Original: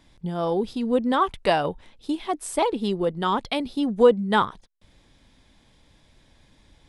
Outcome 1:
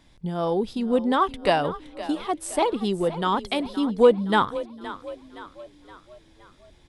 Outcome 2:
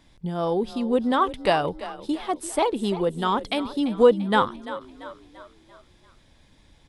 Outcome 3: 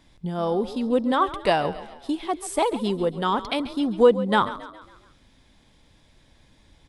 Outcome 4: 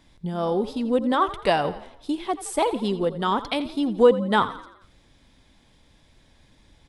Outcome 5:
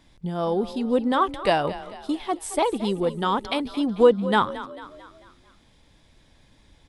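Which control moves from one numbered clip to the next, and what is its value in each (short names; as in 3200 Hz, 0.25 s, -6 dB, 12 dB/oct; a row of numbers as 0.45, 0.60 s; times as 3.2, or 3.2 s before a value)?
frequency-shifting echo, time: 518, 341, 137, 85, 222 ms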